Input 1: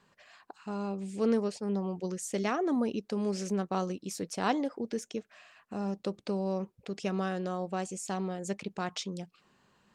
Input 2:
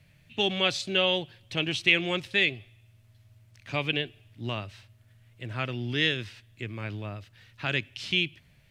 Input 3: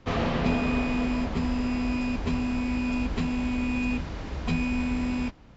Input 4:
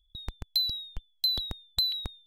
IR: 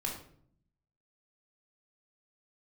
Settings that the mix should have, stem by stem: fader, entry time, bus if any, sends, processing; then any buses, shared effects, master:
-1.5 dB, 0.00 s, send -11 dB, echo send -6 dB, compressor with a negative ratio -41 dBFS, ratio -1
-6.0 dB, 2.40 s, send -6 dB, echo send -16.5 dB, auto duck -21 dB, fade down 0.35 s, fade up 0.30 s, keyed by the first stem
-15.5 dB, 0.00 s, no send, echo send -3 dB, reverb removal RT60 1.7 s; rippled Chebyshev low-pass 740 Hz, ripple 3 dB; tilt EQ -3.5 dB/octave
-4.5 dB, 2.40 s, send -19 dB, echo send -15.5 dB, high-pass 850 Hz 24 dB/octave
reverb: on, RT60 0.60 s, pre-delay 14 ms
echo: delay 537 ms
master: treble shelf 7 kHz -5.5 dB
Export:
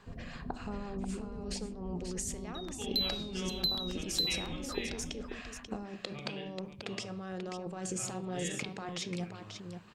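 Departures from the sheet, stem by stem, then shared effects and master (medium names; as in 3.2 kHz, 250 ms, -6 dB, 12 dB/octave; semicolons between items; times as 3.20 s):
stem 2 -6.0 dB -> -14.0 dB; stem 3 -15.5 dB -> -24.5 dB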